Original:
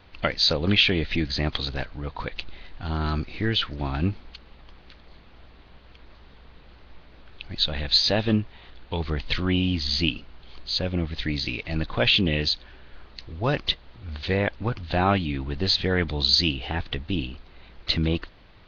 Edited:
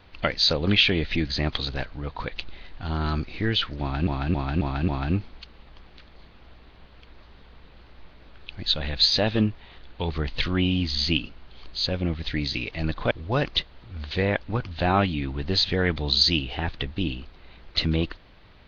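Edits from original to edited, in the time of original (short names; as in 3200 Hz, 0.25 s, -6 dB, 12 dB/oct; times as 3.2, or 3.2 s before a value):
3.8–4.07 loop, 5 plays
12.03–13.23 cut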